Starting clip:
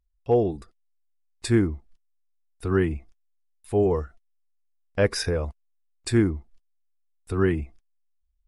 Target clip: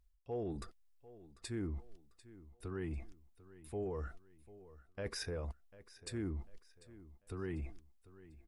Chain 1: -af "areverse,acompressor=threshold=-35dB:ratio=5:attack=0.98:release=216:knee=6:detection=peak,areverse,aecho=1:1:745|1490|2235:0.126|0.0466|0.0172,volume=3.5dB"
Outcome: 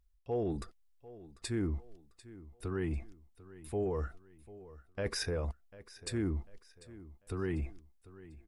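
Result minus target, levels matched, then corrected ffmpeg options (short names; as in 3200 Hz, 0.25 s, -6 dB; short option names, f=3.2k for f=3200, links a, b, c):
compressor: peak gain reduction -6 dB
-af "areverse,acompressor=threshold=-42.5dB:ratio=5:attack=0.98:release=216:knee=6:detection=peak,areverse,aecho=1:1:745|1490|2235:0.126|0.0466|0.0172,volume=3.5dB"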